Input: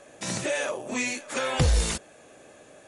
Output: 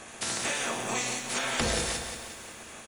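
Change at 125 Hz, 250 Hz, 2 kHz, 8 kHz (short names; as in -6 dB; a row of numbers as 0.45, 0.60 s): -12.0, -4.0, -0.5, +2.0 dB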